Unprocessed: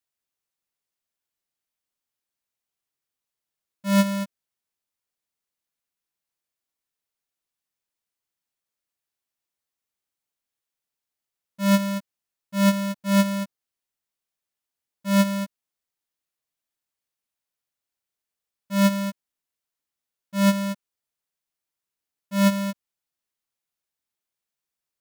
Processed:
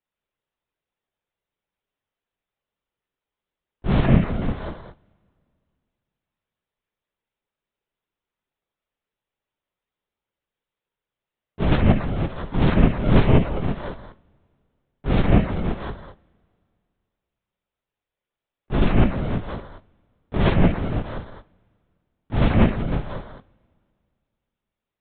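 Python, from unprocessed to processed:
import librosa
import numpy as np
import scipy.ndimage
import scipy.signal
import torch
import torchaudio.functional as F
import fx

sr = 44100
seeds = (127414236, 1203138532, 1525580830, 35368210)

y = scipy.signal.sosfilt(scipy.signal.butter(2, 160.0, 'highpass', fs=sr, output='sos'), x)
y = fx.tilt_shelf(y, sr, db=4.5, hz=860.0)
y = fx.echo_multitap(y, sr, ms=(43, 162, 499, 668, 681), db=(-3.0, -3.5, -11.5, -16.0, -18.5))
y = fx.lpc_vocoder(y, sr, seeds[0], excitation='whisper', order=16)
y = fx.rev_double_slope(y, sr, seeds[1], early_s=0.32, late_s=2.5, knee_db=-22, drr_db=15.0)
y = F.gain(torch.from_numpy(y), 3.5).numpy()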